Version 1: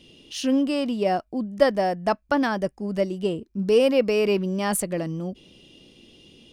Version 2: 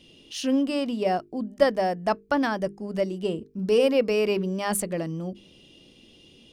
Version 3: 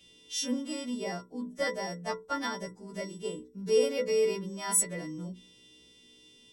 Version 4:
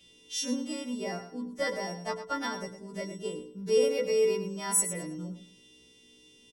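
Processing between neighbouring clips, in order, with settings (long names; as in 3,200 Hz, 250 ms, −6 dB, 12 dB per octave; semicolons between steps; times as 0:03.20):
mains-hum notches 50/100/150/200/250/300/350/400/450 Hz; level −1.5 dB
every partial snapped to a pitch grid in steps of 2 semitones; stiff-string resonator 60 Hz, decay 0.28 s, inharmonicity 0.002
repeating echo 107 ms, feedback 25%, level −11 dB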